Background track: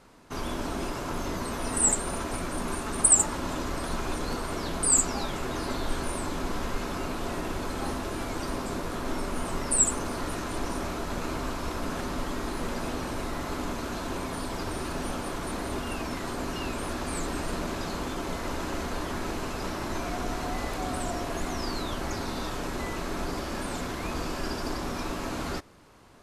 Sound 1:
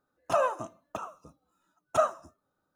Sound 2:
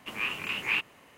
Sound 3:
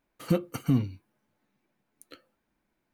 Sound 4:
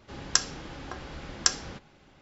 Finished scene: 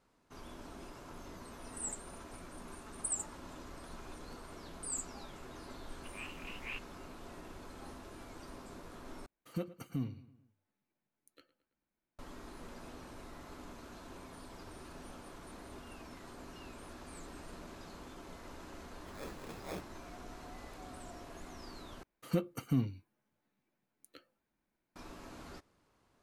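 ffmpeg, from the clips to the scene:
-filter_complex "[2:a]asplit=2[a][b];[3:a]asplit=2[c][d];[0:a]volume=-17.5dB[e];[c]asplit=2[f][g];[g]adelay=110,lowpass=f=4.6k:p=1,volume=-17dB,asplit=2[h][i];[i]adelay=110,lowpass=f=4.6k:p=1,volume=0.5,asplit=2[j][k];[k]adelay=110,lowpass=f=4.6k:p=1,volume=0.5,asplit=2[l][m];[m]adelay=110,lowpass=f=4.6k:p=1,volume=0.5[n];[f][h][j][l][n]amix=inputs=5:normalize=0[o];[b]acrusher=samples=15:mix=1:aa=0.000001[p];[e]asplit=3[q][r][s];[q]atrim=end=9.264[t];[o]atrim=end=2.93,asetpts=PTS-STARTPTS,volume=-13dB[u];[r]atrim=start=12.186:end=22.034[v];[d]atrim=end=2.93,asetpts=PTS-STARTPTS,volume=-7dB[w];[s]atrim=start=24.956[x];[a]atrim=end=1.17,asetpts=PTS-STARTPTS,volume=-16dB,afade=t=in:d=0.004:c=hsin,afade=t=out:st=1.166:d=0.004:c=hsin,adelay=5980[y];[p]atrim=end=1.17,asetpts=PTS-STARTPTS,volume=-15dB,afade=t=in:d=0.004:c=hsin,afade=t=out:st=1.166:d=0.004:c=hsin,adelay=19000[z];[t][u]acrossfade=d=0.004:c1=hsin:c2=hsin[aa];[aa][v]acrossfade=d=0.004:c1=hsin:c2=hsin[ab];[ab][w]acrossfade=d=0.004:c1=hsin:c2=hsin[ac];[ac][x]acrossfade=d=0.004:c1=hsin:c2=hsin[ad];[ad][y][z]amix=inputs=3:normalize=0"

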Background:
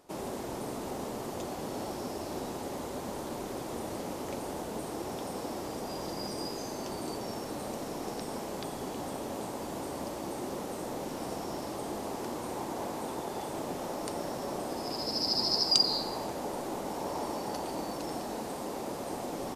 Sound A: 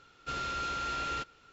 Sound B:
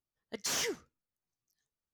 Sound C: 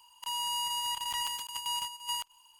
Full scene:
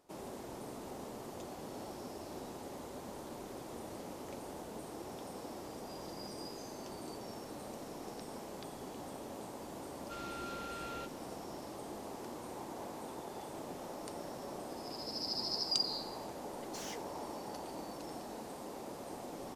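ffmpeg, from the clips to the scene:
-filter_complex "[0:a]volume=-8.5dB[a];[1:a]atrim=end=1.52,asetpts=PTS-STARTPTS,volume=-11dB,afade=t=in:d=0.004:c=hsin,afade=t=out:st=1.516:d=0.004:c=hsin,adelay=9830[b];[2:a]atrim=end=1.93,asetpts=PTS-STARTPTS,volume=-13.5dB,afade=t=in:d=0.004:c=hsin,afade=t=out:st=1.926:d=0.004:c=hsin,adelay=16290[c];[a][b][c]amix=inputs=3:normalize=0"

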